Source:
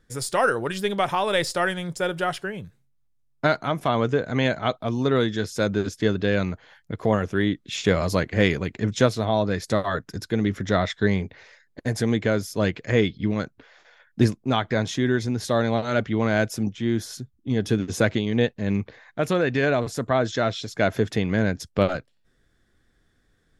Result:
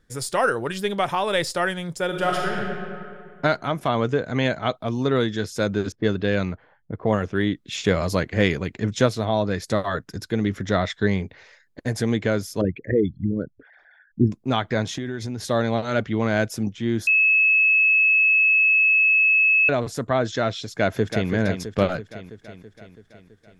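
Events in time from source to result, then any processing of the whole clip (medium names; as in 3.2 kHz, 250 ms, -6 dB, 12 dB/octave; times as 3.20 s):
2.07–2.59 s: reverb throw, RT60 2.3 s, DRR -2.5 dB
5.92–7.35 s: level-controlled noise filter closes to 570 Hz, open at -16.5 dBFS
12.61–14.32 s: resonances exaggerated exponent 3
14.91–15.41 s: compression 10:1, threshold -24 dBFS
17.07–19.69 s: bleep 2.59 kHz -14 dBFS
20.75–21.30 s: echo throw 330 ms, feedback 65%, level -8 dB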